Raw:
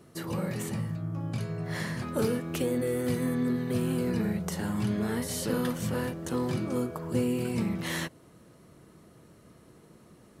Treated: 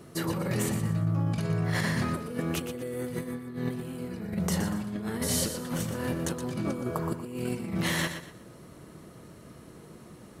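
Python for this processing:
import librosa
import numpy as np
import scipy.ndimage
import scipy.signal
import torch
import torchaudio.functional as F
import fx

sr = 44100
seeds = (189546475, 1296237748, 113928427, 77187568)

p1 = fx.over_compress(x, sr, threshold_db=-33.0, ratio=-0.5)
p2 = p1 + fx.echo_feedback(p1, sr, ms=120, feedback_pct=29, wet_db=-9, dry=0)
y = p2 * 10.0 ** (2.5 / 20.0)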